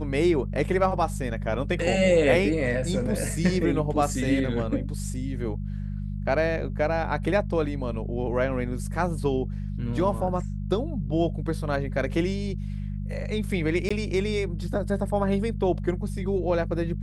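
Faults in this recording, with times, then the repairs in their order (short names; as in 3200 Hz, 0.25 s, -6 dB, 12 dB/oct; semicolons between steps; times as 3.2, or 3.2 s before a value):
hum 50 Hz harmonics 4 -31 dBFS
13.89–13.9 gap 15 ms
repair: de-hum 50 Hz, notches 4; interpolate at 13.89, 15 ms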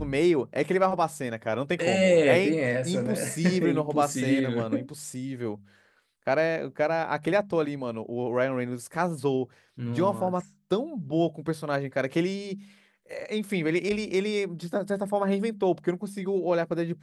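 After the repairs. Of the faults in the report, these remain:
none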